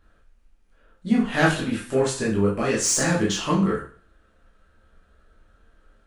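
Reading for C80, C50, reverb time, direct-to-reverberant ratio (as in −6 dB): 11.0 dB, 5.5 dB, 0.40 s, −6.0 dB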